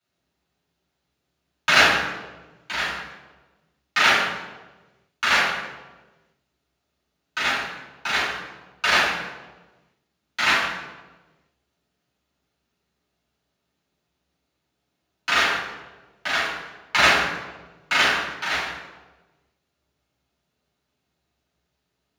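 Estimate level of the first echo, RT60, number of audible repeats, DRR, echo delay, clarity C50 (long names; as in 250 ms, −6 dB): no echo audible, 1.3 s, no echo audible, −11.0 dB, no echo audible, 0.0 dB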